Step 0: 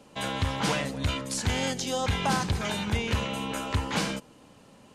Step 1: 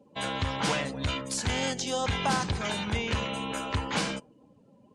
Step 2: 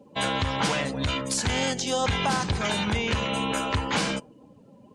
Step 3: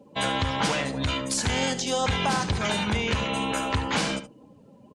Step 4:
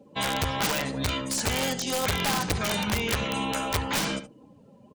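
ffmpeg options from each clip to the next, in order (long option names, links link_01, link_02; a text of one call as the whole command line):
ffmpeg -i in.wav -af "lowpass=frequency=12000:width=0.5412,lowpass=frequency=12000:width=1.3066,afftdn=noise_reduction=21:noise_floor=-49,lowshelf=frequency=250:gain=-3.5" out.wav
ffmpeg -i in.wav -af "alimiter=limit=-21.5dB:level=0:latency=1:release=225,volume=6.5dB" out.wav
ffmpeg -i in.wav -af "aecho=1:1:72:0.224" out.wav
ffmpeg -i in.wav -af "flanger=delay=0.5:depth=1.2:regen=-77:speed=0.94:shape=sinusoidal,aeval=exprs='(mod(11.9*val(0)+1,2)-1)/11.9':channel_layout=same,volume=3dB" out.wav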